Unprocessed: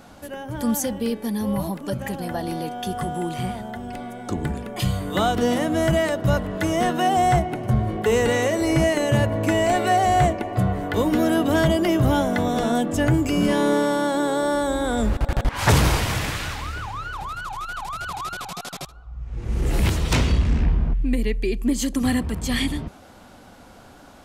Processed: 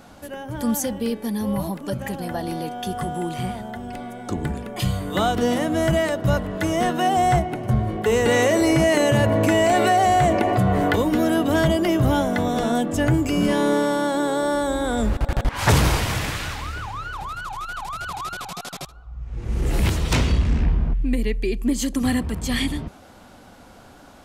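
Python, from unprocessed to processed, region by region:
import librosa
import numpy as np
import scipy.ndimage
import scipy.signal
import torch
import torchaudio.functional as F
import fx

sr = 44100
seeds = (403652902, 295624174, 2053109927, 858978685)

y = fx.chain(x, sr, fx.low_shelf(hz=61.0, db=-11.0),
    fx.env_flatten(amount_pct=70), at=(8.26, 10.96))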